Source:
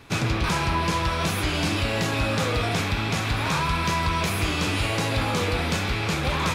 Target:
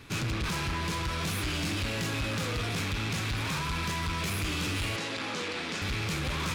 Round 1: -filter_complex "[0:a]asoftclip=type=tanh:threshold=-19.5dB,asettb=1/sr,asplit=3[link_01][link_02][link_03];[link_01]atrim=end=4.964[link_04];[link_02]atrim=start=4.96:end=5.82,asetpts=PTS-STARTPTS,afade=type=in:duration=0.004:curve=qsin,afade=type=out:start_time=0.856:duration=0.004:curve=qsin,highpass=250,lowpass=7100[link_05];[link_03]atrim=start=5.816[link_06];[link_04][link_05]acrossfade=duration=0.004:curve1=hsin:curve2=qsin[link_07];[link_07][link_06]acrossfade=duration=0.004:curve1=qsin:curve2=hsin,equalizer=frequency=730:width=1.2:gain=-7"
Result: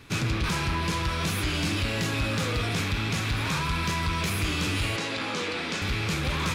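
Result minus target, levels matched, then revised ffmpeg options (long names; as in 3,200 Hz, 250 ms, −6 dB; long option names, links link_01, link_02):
soft clipping: distortion −8 dB
-filter_complex "[0:a]asoftclip=type=tanh:threshold=-27.5dB,asettb=1/sr,asplit=3[link_01][link_02][link_03];[link_01]atrim=end=4.964[link_04];[link_02]atrim=start=4.96:end=5.82,asetpts=PTS-STARTPTS,afade=type=in:duration=0.004:curve=qsin,afade=type=out:start_time=0.856:duration=0.004:curve=qsin,highpass=250,lowpass=7100[link_05];[link_03]atrim=start=5.816[link_06];[link_04][link_05]acrossfade=duration=0.004:curve1=hsin:curve2=qsin[link_07];[link_07][link_06]acrossfade=duration=0.004:curve1=qsin:curve2=hsin,equalizer=frequency=730:width=1.2:gain=-7"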